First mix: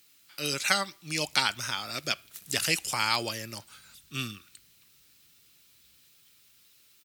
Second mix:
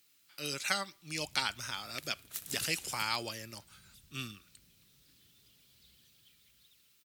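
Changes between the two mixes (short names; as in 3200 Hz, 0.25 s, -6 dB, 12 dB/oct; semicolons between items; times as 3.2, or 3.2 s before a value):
speech -7.0 dB; background +4.5 dB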